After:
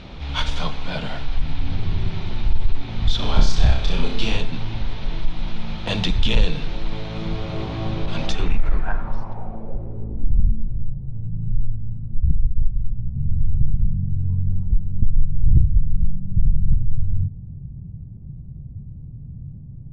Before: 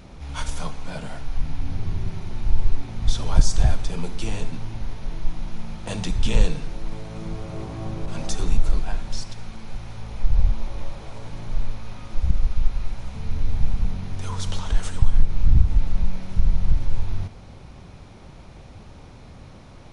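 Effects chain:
in parallel at −1.5 dB: downward compressor, threshold −20 dBFS, peak gain reduction 14 dB
on the sum: low-pass filter sweep 3,600 Hz → 140 Hz, 0:08.21–0:10.79
soft clipping −4.5 dBFS, distortion −18 dB
0:03.16–0:04.37: flutter between parallel walls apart 5.4 metres, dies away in 0.52 s

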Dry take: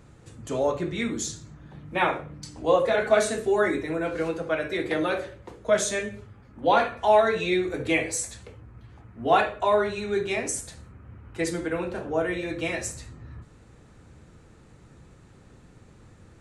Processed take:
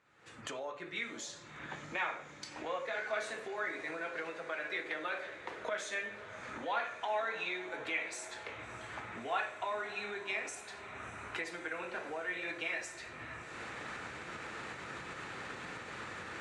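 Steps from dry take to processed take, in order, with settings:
camcorder AGC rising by 49 dB per second
resonant band-pass 1,900 Hz, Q 1
feedback delay with all-pass diffusion 628 ms, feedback 78%, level −15 dB
level −9 dB

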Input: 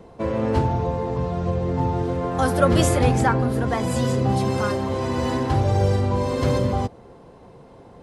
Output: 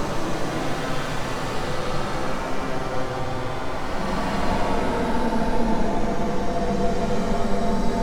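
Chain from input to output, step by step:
full-wave rectification
extreme stretch with random phases 15×, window 0.10 s, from 0:05.22

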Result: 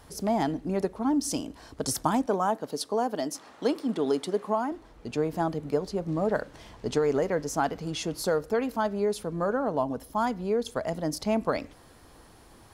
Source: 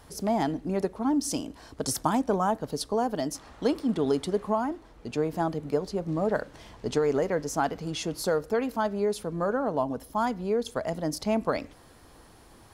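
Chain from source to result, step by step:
0:02.26–0:04.72: high-pass filter 220 Hz 12 dB per octave

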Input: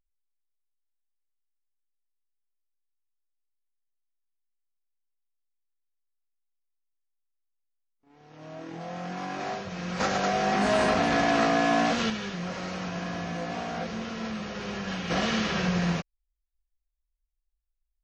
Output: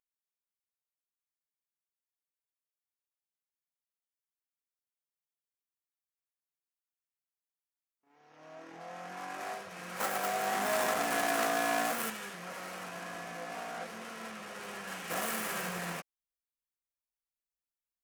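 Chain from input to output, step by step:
stylus tracing distortion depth 0.36 ms
high-pass filter 1,100 Hz 6 dB per octave
parametric band 4,000 Hz −8 dB 1.4 octaves
level −1 dB

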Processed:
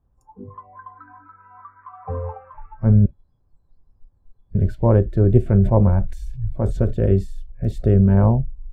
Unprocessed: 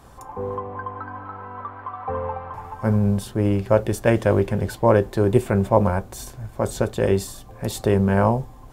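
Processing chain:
0:03.06–0:04.55: fill with room tone
spectral tilt −4.5 dB per octave
noise reduction from a noise print of the clip's start 25 dB
0:05.48–0:06.93: level that may fall only so fast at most 80 dB per second
level −7 dB

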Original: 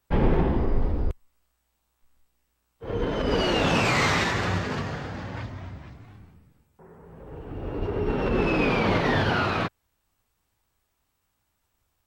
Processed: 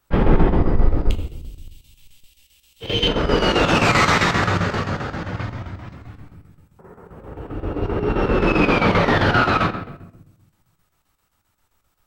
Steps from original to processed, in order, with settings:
0:01.10–0:03.08: high shelf with overshoot 2,000 Hz +14 dB, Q 3
on a send at −4 dB: convolution reverb RT60 0.85 s, pre-delay 6 ms
on the sum: square-wave tremolo 7.6 Hz, depth 60%, duty 75%
parametric band 1,300 Hz +6 dB 0.28 octaves
in parallel at −9 dB: soft clipping −16.5 dBFS, distortion −12 dB
on the sum: level +3 dB

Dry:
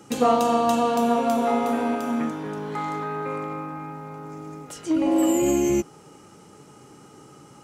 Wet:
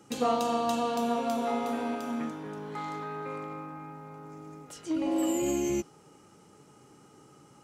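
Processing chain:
dynamic equaliser 4,200 Hz, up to +5 dB, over −45 dBFS, Q 1.1
level −8 dB

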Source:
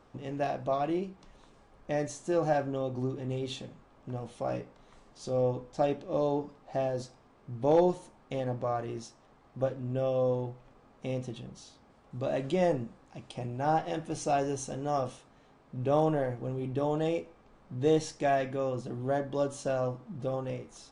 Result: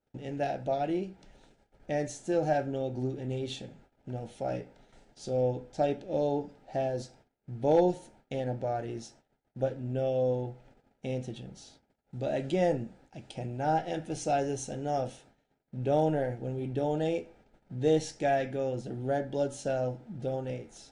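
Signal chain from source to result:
noise gate −57 dBFS, range −26 dB
Butterworth band-reject 1,100 Hz, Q 2.9

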